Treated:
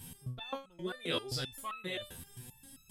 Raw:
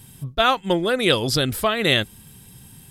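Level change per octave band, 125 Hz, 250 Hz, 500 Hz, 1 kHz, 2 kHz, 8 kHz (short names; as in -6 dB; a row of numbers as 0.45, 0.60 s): -16.0, -19.5, -20.0, -21.0, -20.0, -15.0 dB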